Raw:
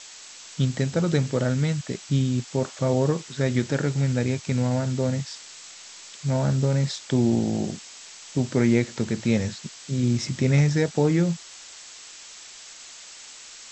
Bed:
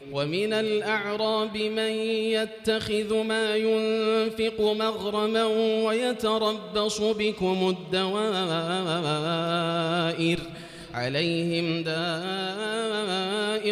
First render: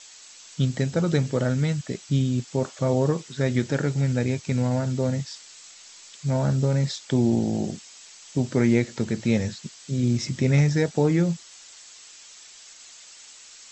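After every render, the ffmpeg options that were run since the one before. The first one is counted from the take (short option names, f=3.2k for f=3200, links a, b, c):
-af "afftdn=nr=6:nf=-44"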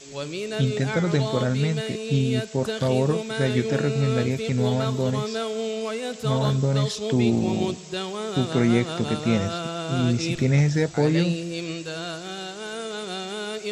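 -filter_complex "[1:a]volume=-4.5dB[a];[0:a][a]amix=inputs=2:normalize=0"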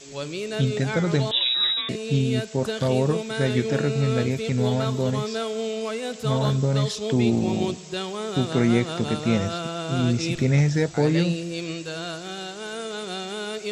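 -filter_complex "[0:a]asettb=1/sr,asplit=3[a][b][c];[a]atrim=end=1.314[d];[b]atrim=start=1.31:end=1.89,asetpts=PTS-STARTPTS,afade=t=in:d=0.004:c=qsin,afade=t=out:st=0.576:d=0.004:c=qsin,lowpass=f=3.4k:t=q:w=0.5098,lowpass=f=3.4k:t=q:w=0.6013,lowpass=f=3.4k:t=q:w=0.9,lowpass=f=3.4k:t=q:w=2.563,afreqshift=-4000[e];[c]atrim=start=1.886[f];[d][e]acrossfade=d=0.004:c1=hsin:c2=qsin[g];[g][f]acrossfade=d=0.004:c1=qsin:c2=hsin"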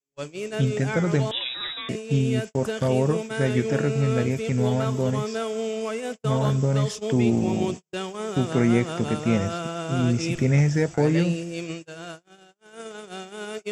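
-af "agate=range=-48dB:threshold=-30dB:ratio=16:detection=peak,equalizer=f=4k:w=4.5:g=-14"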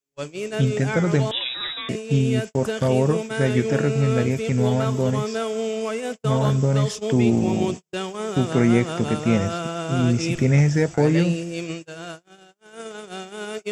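-af "volume=2.5dB"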